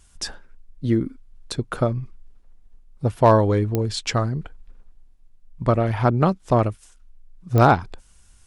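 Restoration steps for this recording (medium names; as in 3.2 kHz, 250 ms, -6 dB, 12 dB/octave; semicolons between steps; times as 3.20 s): clip repair -4.5 dBFS; de-click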